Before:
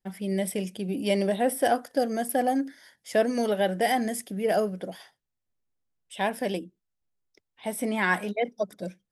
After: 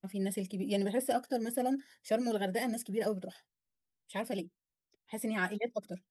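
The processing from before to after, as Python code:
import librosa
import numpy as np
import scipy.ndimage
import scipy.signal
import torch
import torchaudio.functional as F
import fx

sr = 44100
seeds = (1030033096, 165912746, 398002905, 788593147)

y = fx.stretch_vocoder(x, sr, factor=0.67)
y = fx.notch_cascade(y, sr, direction='rising', hz=1.9)
y = y * librosa.db_to_amplitude(-5.0)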